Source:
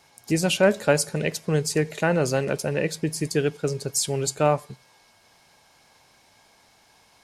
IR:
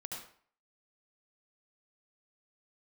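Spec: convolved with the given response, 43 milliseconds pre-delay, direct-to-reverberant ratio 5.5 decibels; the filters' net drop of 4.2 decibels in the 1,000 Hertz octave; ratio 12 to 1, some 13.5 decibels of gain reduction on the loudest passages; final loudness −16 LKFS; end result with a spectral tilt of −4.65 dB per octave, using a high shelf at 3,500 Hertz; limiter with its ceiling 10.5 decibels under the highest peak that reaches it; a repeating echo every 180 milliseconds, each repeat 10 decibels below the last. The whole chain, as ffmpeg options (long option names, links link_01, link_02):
-filter_complex "[0:a]equalizer=frequency=1000:width_type=o:gain=-5.5,highshelf=frequency=3500:gain=-7.5,acompressor=threshold=-29dB:ratio=12,alimiter=level_in=5.5dB:limit=-24dB:level=0:latency=1,volume=-5.5dB,aecho=1:1:180|360|540|720:0.316|0.101|0.0324|0.0104,asplit=2[link_01][link_02];[1:a]atrim=start_sample=2205,adelay=43[link_03];[link_02][link_03]afir=irnorm=-1:irlink=0,volume=-4dB[link_04];[link_01][link_04]amix=inputs=2:normalize=0,volume=22dB"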